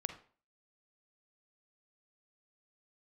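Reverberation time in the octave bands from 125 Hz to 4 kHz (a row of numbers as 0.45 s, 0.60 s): 0.40 s, 0.45 s, 0.45 s, 0.45 s, 0.40 s, 0.35 s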